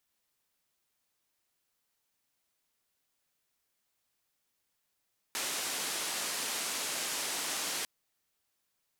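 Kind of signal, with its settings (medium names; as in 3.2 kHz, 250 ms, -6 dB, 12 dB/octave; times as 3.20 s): noise band 240–9900 Hz, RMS -35.5 dBFS 2.50 s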